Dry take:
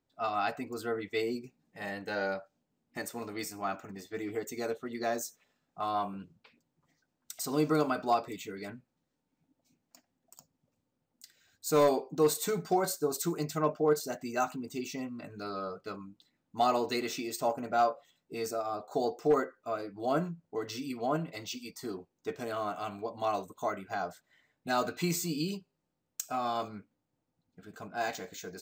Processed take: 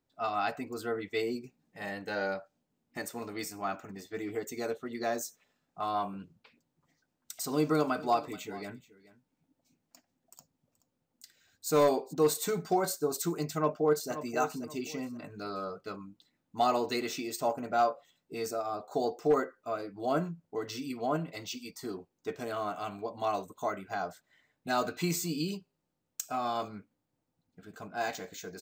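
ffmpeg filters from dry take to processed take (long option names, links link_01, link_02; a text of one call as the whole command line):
ffmpeg -i in.wav -filter_complex "[0:a]asplit=3[link_01][link_02][link_03];[link_01]afade=type=out:start_time=7.87:duration=0.02[link_04];[link_02]aecho=1:1:428:0.112,afade=type=in:start_time=7.87:duration=0.02,afade=type=out:start_time=12.12:duration=0.02[link_05];[link_03]afade=type=in:start_time=12.12:duration=0.02[link_06];[link_04][link_05][link_06]amix=inputs=3:normalize=0,asplit=2[link_07][link_08];[link_08]afade=type=in:start_time=13.57:duration=0.01,afade=type=out:start_time=14.11:duration=0.01,aecho=0:1:530|1060|1590:0.281838|0.0845515|0.0253654[link_09];[link_07][link_09]amix=inputs=2:normalize=0" out.wav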